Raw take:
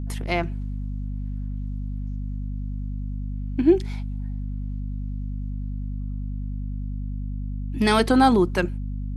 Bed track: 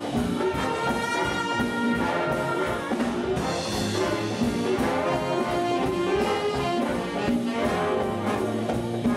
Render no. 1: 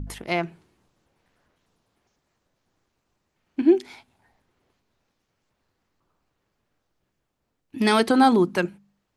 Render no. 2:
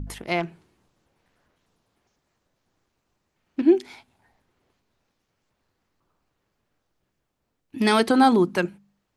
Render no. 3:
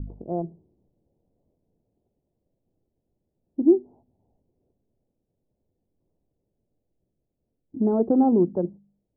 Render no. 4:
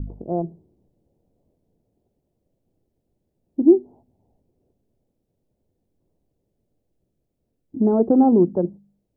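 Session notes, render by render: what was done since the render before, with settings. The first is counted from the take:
de-hum 50 Hz, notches 5
0.40–3.64 s: self-modulated delay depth 0.16 ms
local Wiener filter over 25 samples; inverse Chebyshev low-pass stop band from 2.2 kHz, stop band 60 dB
trim +4 dB

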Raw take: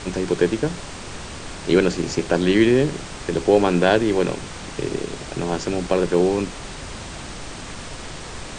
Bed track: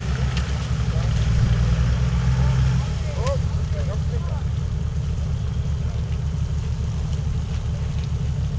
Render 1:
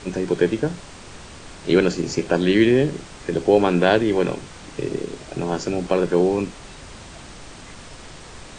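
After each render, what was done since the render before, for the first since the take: noise print and reduce 6 dB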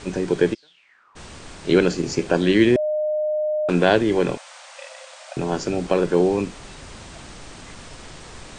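0.53–1.15 s: band-pass filter 5.4 kHz -> 1 kHz, Q 10; 2.76–3.69 s: bleep 610 Hz -19.5 dBFS; 4.37–5.37 s: brick-wall FIR high-pass 510 Hz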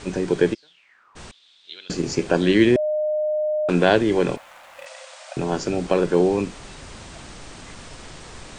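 1.31–1.90 s: band-pass filter 3.6 kHz, Q 8.1; 4.36–4.86 s: median filter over 9 samples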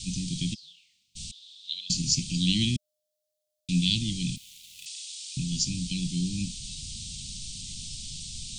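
inverse Chebyshev band-stop 420–1700 Hz, stop band 50 dB; resonant high shelf 1.7 kHz +7 dB, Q 1.5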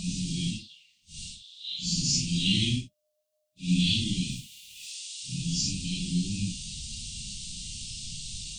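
phase randomisation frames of 200 ms; small resonant body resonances 680/1100/2800 Hz, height 10 dB, ringing for 35 ms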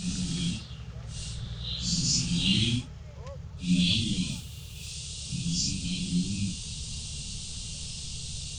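add bed track -19 dB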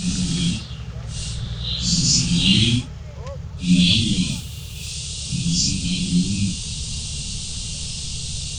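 trim +9 dB

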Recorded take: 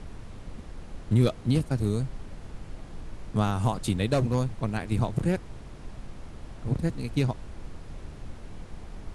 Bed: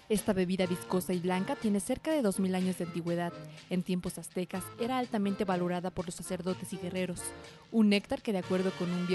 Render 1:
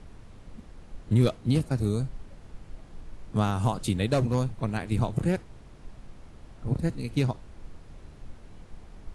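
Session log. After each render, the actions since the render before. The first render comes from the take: noise print and reduce 6 dB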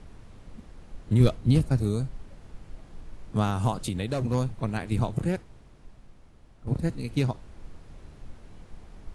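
1.20–1.79 s: bass shelf 96 Hz +12 dB; 3.74–4.25 s: compression 3:1, threshold -25 dBFS; 5.05–6.67 s: fade out quadratic, to -7.5 dB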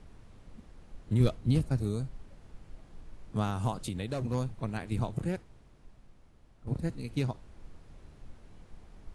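trim -5.5 dB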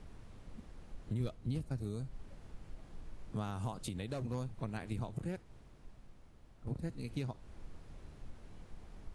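compression 2.5:1, threshold -39 dBFS, peak gain reduction 13 dB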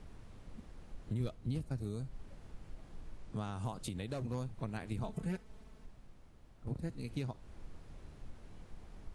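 3.18–3.65 s: elliptic low-pass 9.7 kHz; 5.03–5.86 s: comb 4.6 ms, depth 83%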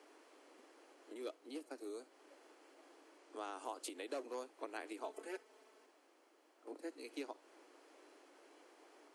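steep high-pass 290 Hz 72 dB/octave; band-stop 3.7 kHz, Q 12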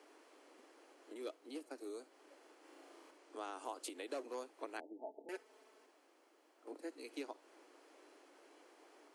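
2.60–3.11 s: flutter echo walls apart 6.1 m, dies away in 0.83 s; 4.80–5.29 s: rippled Chebyshev low-pass 890 Hz, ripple 6 dB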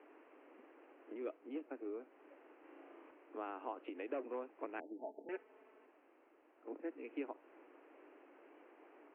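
steep low-pass 2.8 kHz 72 dB/octave; bass shelf 250 Hz +9 dB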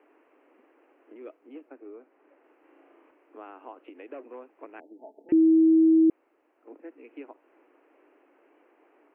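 1.69–2.44 s: band-pass 120–2900 Hz; 5.32–6.10 s: bleep 322 Hz -15 dBFS

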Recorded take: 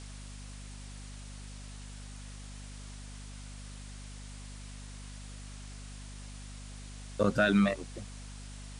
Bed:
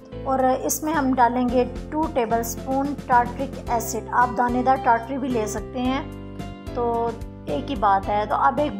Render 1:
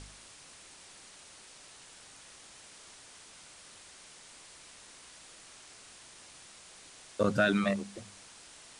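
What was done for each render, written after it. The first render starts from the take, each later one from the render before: de-hum 50 Hz, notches 5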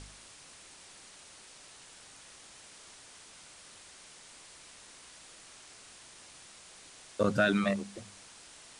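no audible change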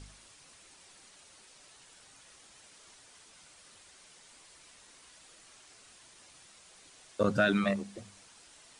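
noise reduction 6 dB, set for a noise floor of -54 dBFS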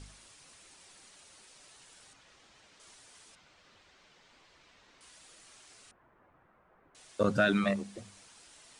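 2.13–2.80 s: distance through air 110 m; 3.35–5.01 s: distance through air 170 m; 5.91–6.95 s: low-pass 1.5 kHz 24 dB/octave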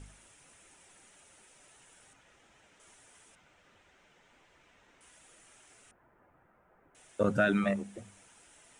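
peaking EQ 4.5 kHz -13 dB 0.68 oct; band-stop 1.1 kHz, Q 11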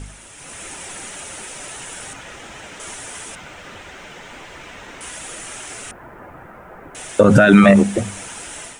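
level rider gain up to 10.5 dB; loudness maximiser +16 dB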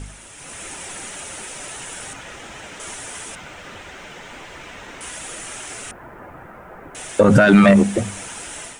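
saturation -2.5 dBFS, distortion -20 dB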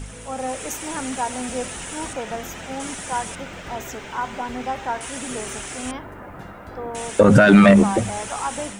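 add bed -8.5 dB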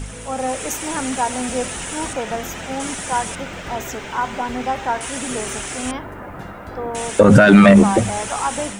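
trim +4.5 dB; peak limiter -2 dBFS, peak gain reduction 3 dB

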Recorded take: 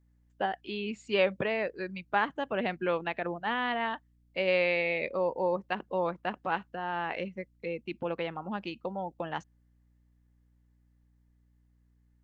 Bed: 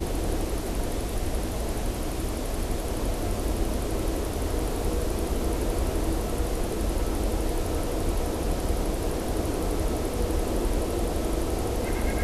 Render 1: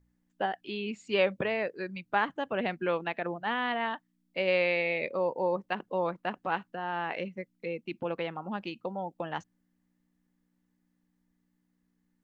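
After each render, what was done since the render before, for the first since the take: de-hum 60 Hz, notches 2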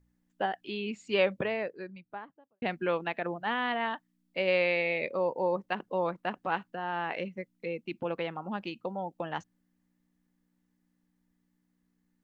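1.24–2.62 s: studio fade out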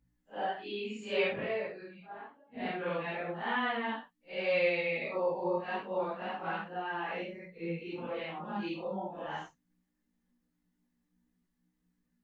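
phase randomisation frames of 200 ms; chorus voices 6, 0.24 Hz, delay 21 ms, depth 4.3 ms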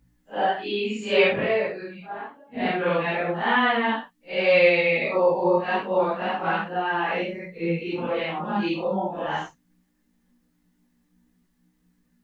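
trim +11.5 dB

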